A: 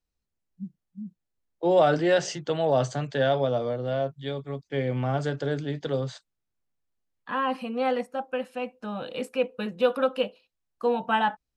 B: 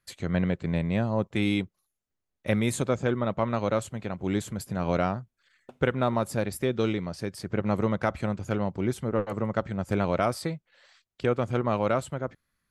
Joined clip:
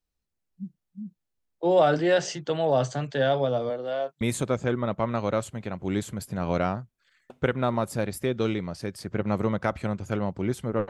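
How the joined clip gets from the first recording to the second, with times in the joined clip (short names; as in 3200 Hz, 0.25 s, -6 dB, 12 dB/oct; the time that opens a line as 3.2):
A
3.69–4.21 HPF 230 Hz -> 660 Hz
4.21 switch to B from 2.6 s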